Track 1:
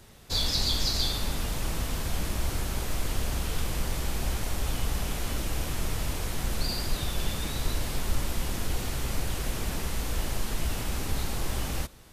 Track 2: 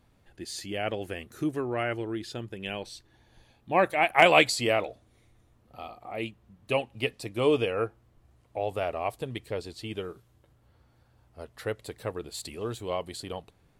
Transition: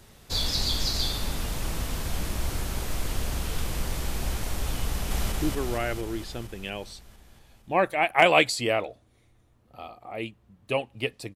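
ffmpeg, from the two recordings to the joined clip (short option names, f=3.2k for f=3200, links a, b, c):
-filter_complex "[0:a]apad=whole_dur=11.35,atrim=end=11.35,atrim=end=5.322[a];[1:a]atrim=start=1.318:end=7.35[b];[a][b]acrossfade=d=0.004:c1=hsin:c2=hsin,asplit=2[c][d];[d]afade=t=in:st=4.87:d=0.01,afade=t=out:st=5.32:d=0.01,aecho=0:1:230|460|690|920|1150|1380|1610|1840|2070|2300|2530|2760:0.841395|0.588977|0.412284|0.288599|0.202019|0.141413|0.0989893|0.0692925|0.0485048|0.0339533|0.0237673|0.0166371[e];[c][e]amix=inputs=2:normalize=0"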